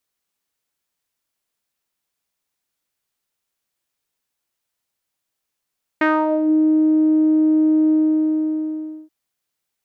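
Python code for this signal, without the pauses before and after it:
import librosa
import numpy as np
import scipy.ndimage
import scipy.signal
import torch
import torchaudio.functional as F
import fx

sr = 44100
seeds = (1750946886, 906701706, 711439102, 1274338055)

y = fx.sub_voice(sr, note=63, wave='saw', cutoff_hz=350.0, q=3.1, env_oct=2.5, env_s=0.49, attack_ms=4.6, decay_s=0.24, sustain_db=-5, release_s=1.18, note_s=1.9, slope=12)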